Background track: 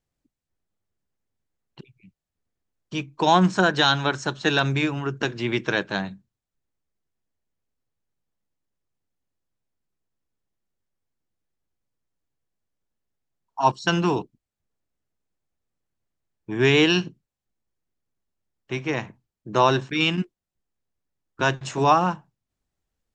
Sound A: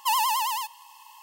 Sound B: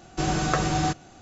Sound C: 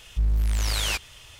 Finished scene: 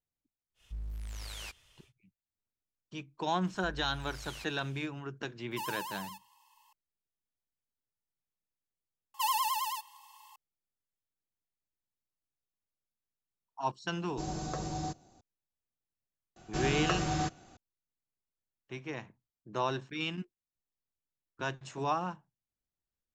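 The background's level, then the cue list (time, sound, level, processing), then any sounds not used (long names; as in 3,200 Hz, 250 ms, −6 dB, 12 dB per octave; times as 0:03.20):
background track −14 dB
0:00.54: mix in C −17.5 dB, fades 0.10 s
0:03.47: mix in C −14.5 dB + downward compressor, threshold −28 dBFS
0:05.51: mix in A −16 dB
0:09.14: mix in A −8 dB + comb filter 3.7 ms
0:14.00: mix in B −12 dB + flat-topped bell 2,000 Hz −8.5 dB
0:16.36: mix in B −7.5 dB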